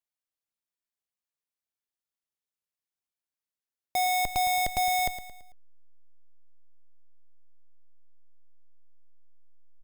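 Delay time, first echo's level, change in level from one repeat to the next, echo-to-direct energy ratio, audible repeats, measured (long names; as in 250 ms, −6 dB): 111 ms, −12.0 dB, −7.5 dB, −11.0 dB, 4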